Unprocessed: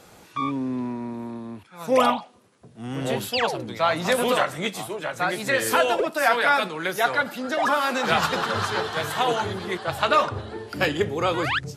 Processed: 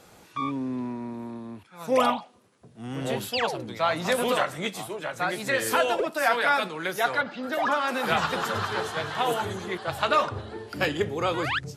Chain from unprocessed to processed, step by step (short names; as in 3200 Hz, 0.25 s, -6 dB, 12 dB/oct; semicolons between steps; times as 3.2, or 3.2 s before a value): 7.21–9.78 bands offset in time lows, highs 0.22 s, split 5200 Hz; gain -3 dB